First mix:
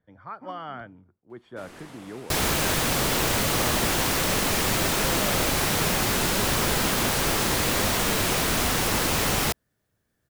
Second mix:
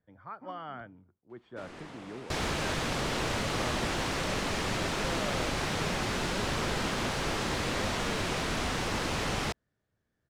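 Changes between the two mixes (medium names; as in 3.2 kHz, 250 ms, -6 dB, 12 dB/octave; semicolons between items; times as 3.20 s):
speech -4.5 dB; second sound -6.0 dB; master: add distance through air 78 m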